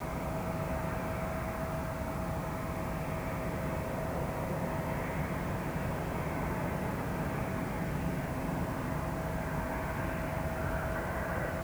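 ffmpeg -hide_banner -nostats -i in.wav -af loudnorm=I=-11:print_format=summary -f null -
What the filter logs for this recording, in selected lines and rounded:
Input Integrated:    -35.4 LUFS
Input True Peak:     -21.7 dBTP
Input LRA:             1.0 LU
Input Threshold:     -45.4 LUFS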